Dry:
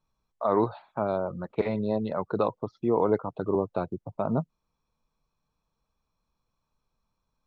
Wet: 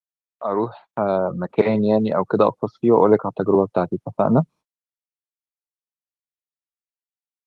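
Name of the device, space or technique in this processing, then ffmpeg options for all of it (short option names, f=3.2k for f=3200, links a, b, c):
video call: -af "highpass=f=110:w=0.5412,highpass=f=110:w=1.3066,dynaudnorm=f=280:g=7:m=14dB,agate=range=-39dB:threshold=-41dB:ratio=16:detection=peak" -ar 48000 -c:a libopus -b:a 24k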